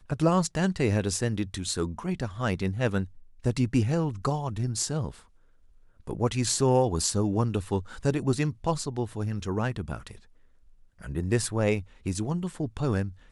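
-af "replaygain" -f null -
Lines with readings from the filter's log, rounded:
track_gain = +9.0 dB
track_peak = 0.238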